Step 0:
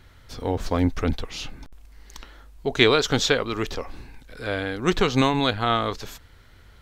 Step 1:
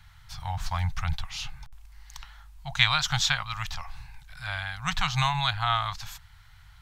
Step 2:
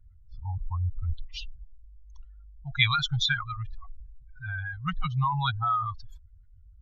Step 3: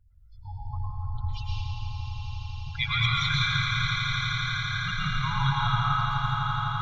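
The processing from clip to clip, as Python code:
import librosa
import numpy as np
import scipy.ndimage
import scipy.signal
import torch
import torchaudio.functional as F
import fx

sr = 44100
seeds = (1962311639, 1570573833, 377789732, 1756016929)

y1 = scipy.signal.sosfilt(scipy.signal.ellip(3, 1.0, 50, [150.0, 800.0], 'bandstop', fs=sr, output='sos'), x)
y1 = y1 * librosa.db_to_amplitude(-1.0)
y2 = fx.spec_expand(y1, sr, power=3.1)
y3 = fx.spec_quant(y2, sr, step_db=30)
y3 = fx.echo_swell(y3, sr, ms=84, loudest=8, wet_db=-11)
y3 = fx.rev_plate(y3, sr, seeds[0], rt60_s=3.0, hf_ratio=0.75, predelay_ms=95, drr_db=-6.5)
y3 = y3 * librosa.db_to_amplitude(-6.5)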